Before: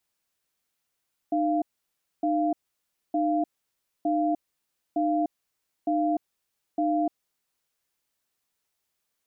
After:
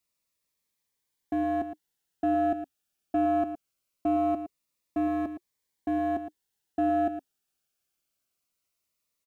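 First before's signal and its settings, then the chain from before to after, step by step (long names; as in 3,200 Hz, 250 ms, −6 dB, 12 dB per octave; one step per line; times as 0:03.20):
tone pair in a cadence 305 Hz, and 692 Hz, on 0.30 s, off 0.61 s, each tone −24.5 dBFS 6.33 s
leveller curve on the samples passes 1
single-tap delay 113 ms −10.5 dB
phaser whose notches keep moving one way falling 0.22 Hz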